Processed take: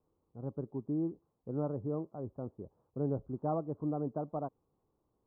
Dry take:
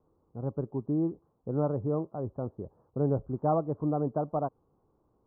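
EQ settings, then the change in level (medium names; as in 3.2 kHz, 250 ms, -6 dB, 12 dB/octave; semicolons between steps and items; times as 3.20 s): dynamic bell 260 Hz, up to +4 dB, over -40 dBFS, Q 0.9; -8.5 dB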